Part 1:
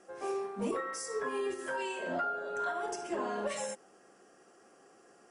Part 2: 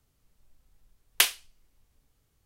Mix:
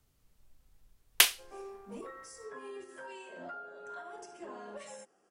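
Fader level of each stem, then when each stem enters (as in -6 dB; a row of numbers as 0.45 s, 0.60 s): -10.5 dB, -0.5 dB; 1.30 s, 0.00 s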